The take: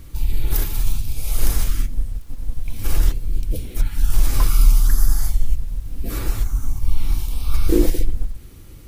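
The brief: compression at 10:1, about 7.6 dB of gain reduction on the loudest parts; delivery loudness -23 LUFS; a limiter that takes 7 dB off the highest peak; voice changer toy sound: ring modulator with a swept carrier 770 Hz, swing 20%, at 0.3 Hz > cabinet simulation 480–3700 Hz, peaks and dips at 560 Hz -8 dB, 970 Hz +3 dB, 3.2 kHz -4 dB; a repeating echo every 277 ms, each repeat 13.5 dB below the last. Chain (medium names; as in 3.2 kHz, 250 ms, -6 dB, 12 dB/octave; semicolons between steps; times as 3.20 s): compression 10:1, threshold -15 dBFS; peak limiter -14.5 dBFS; feedback delay 277 ms, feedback 21%, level -13.5 dB; ring modulator with a swept carrier 770 Hz, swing 20%, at 0.3 Hz; cabinet simulation 480–3700 Hz, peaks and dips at 560 Hz -8 dB, 970 Hz +3 dB, 3.2 kHz -4 dB; trim +2 dB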